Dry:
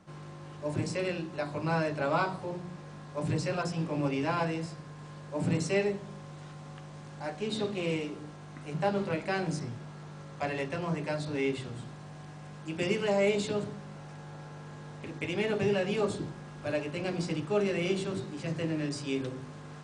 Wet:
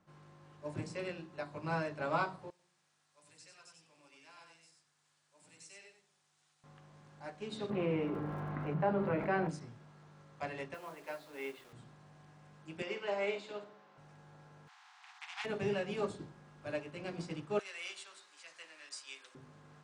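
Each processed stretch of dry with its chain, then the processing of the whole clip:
2.50–6.64 s: pre-emphasis filter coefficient 0.97 + delay 92 ms -4.5 dB
7.69–9.48 s: low-pass 1.6 kHz + crackle 88 per s -60 dBFS + level flattener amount 70%
10.74–11.73 s: band-pass 400–3900 Hz + word length cut 8-bit, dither none
12.82–13.98 s: band-pass 390–4700 Hz + flutter echo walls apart 8.5 m, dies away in 0.33 s
14.67–15.44 s: spectral contrast reduction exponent 0.42 + brick-wall FIR high-pass 690 Hz + distance through air 120 m
17.59–19.35 s: high-pass 960 Hz + tilt EQ +2.5 dB/octave
whole clip: peaking EQ 1.3 kHz +3 dB 1.9 oct; upward expansion 1.5:1, over -39 dBFS; trim -5.5 dB

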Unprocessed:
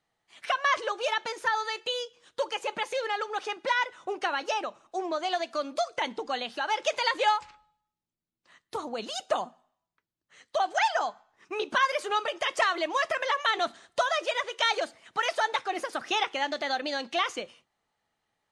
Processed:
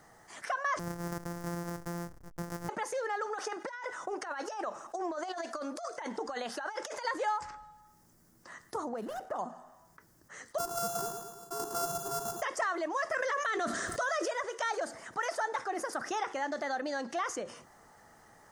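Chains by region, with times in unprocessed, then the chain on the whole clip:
0.79–2.69 s: sorted samples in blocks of 256 samples + hysteresis with a dead band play -50.5 dBFS + compression 2:1, threshold -40 dBFS
3.26–7.05 s: bass shelf 300 Hz -10 dB + compressor with a negative ratio -35 dBFS, ratio -0.5
8.93–9.39 s: median filter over 9 samples + treble shelf 5.1 kHz -10 dB + compression 2:1, threshold -35 dBFS
10.58–12.42 s: sorted samples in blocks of 64 samples + static phaser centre 400 Hz, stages 8 + feedback delay 110 ms, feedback 35%, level -10.5 dB
13.12–14.28 s: peaking EQ 850 Hz -14.5 dB 0.39 oct + level flattener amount 70%
whole clip: high-order bell 3.1 kHz -13.5 dB 1.1 oct; level flattener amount 50%; trim -8.5 dB

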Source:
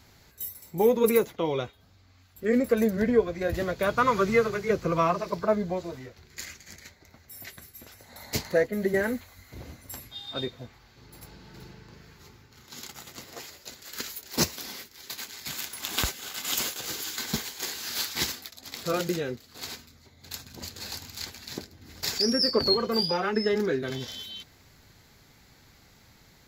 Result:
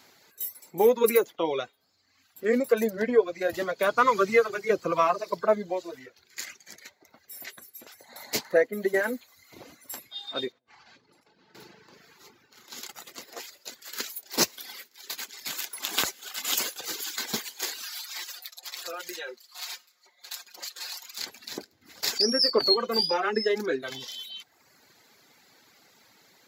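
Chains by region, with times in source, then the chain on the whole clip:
10.52–11.55 s: distance through air 84 m + compressor with a negative ratio -57 dBFS
17.83–21.18 s: high-pass 770 Hz + comb 5.6 ms, depth 86% + compression 20:1, threshold -33 dBFS
whole clip: reverb removal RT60 1 s; high-pass 300 Hz 12 dB/octave; trim +2.5 dB

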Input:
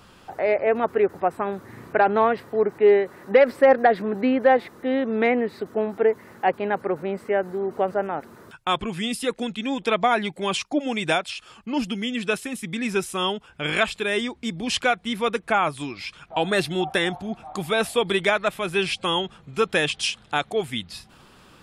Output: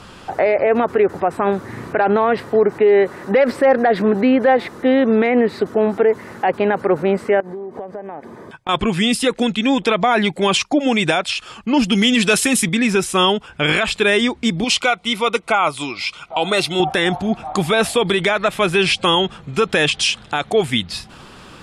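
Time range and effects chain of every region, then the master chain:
7.40–8.69 s: treble shelf 2.6 kHz -10 dB + comb of notches 1.4 kHz + compression 10:1, threshold -37 dBFS
11.92–12.69 s: treble shelf 3.5 kHz +8.5 dB + waveshaping leveller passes 1
14.64–16.80 s: Butterworth band-stop 1.7 kHz, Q 4.6 + bass shelf 370 Hz -11 dB
whole clip: low-pass 10 kHz 12 dB/octave; loudness maximiser +16.5 dB; trim -5.5 dB

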